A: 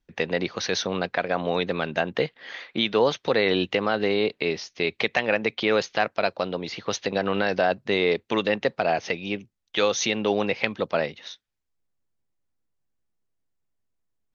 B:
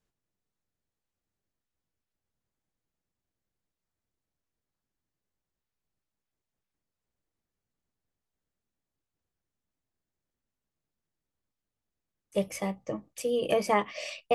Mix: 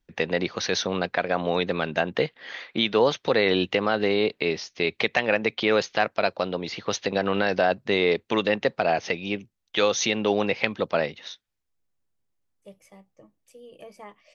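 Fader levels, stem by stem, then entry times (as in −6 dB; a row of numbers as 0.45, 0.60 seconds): +0.5, −18.5 decibels; 0.00, 0.30 seconds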